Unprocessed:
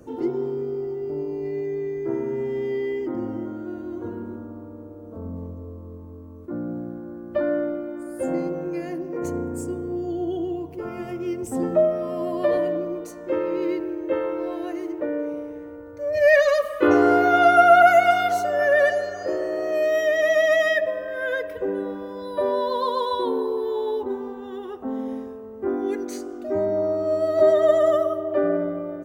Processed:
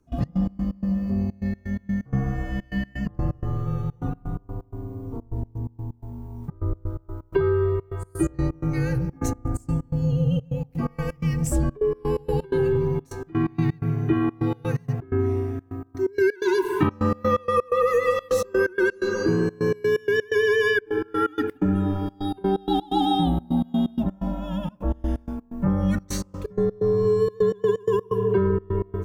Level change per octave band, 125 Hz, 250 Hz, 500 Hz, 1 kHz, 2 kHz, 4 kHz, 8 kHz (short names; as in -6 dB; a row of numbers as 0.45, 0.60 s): +15.0 dB, +2.5 dB, -3.5 dB, -7.0 dB, -4.0 dB, -0.5 dB, n/a